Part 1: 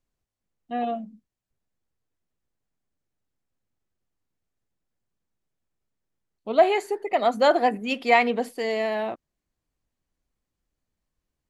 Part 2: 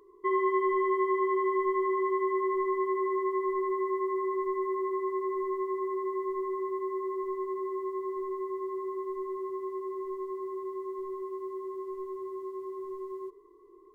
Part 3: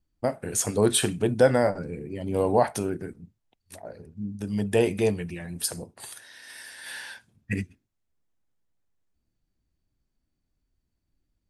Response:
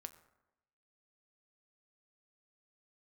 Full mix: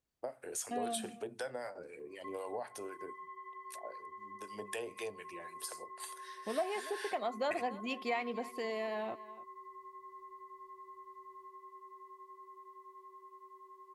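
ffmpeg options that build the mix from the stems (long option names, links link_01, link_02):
-filter_complex "[0:a]acompressor=threshold=-33dB:ratio=2.5,volume=-5dB,asplit=2[link_01][link_02];[link_02]volume=-18dB[link_03];[1:a]highpass=frequency=590:width=0.5412,highpass=frequency=590:width=1.3066,acompressor=threshold=-38dB:ratio=6,adelay=2000,volume=-8.5dB[link_04];[2:a]acrossover=split=910[link_05][link_06];[link_05]aeval=exprs='val(0)*(1-0.7/2+0.7/2*cos(2*PI*3.9*n/s))':channel_layout=same[link_07];[link_06]aeval=exprs='val(0)*(1-0.7/2-0.7/2*cos(2*PI*3.9*n/s))':channel_layout=same[link_08];[link_07][link_08]amix=inputs=2:normalize=0,volume=-4dB,asplit=2[link_09][link_10];[link_10]volume=-21dB[link_11];[link_04][link_09]amix=inputs=2:normalize=0,highpass=frequency=370:width=0.5412,highpass=frequency=370:width=1.3066,acompressor=threshold=-38dB:ratio=6,volume=0dB[link_12];[3:a]atrim=start_sample=2205[link_13];[link_11][link_13]afir=irnorm=-1:irlink=0[link_14];[link_03]aecho=0:1:289:1[link_15];[link_01][link_12][link_14][link_15]amix=inputs=4:normalize=0,highpass=49"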